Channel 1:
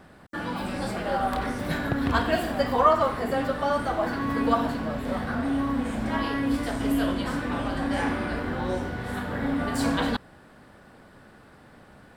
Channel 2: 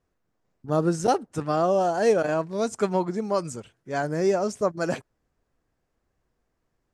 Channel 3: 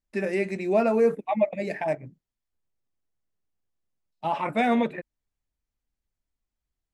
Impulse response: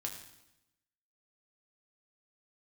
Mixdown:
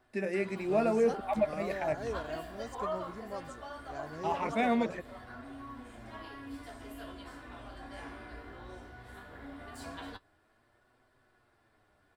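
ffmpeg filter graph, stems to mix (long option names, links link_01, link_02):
-filter_complex "[0:a]equalizer=frequency=220:width_type=o:width=1.1:gain=-7.5,aecho=1:1:2.9:0.41,flanger=delay=8:depth=9.5:regen=40:speed=0.18:shape=sinusoidal,volume=-13dB[link_01];[1:a]volume=-17.5dB[link_02];[2:a]volume=-6dB[link_03];[link_01][link_02][link_03]amix=inputs=3:normalize=0"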